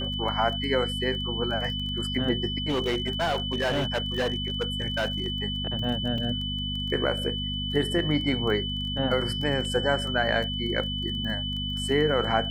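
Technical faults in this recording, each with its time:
crackle 14/s -32 dBFS
hum 50 Hz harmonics 5 -33 dBFS
tone 3000 Hz -31 dBFS
2.68–5.28 clipped -22 dBFS
6.18 gap 3.3 ms
9.65 gap 2.1 ms

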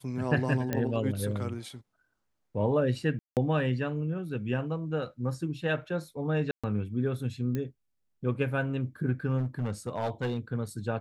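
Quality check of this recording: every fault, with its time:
0.73 pop -15 dBFS
3.19–3.37 gap 0.178 s
6.51–6.64 gap 0.126 s
7.55 pop -20 dBFS
9.37–10.39 clipped -25.5 dBFS

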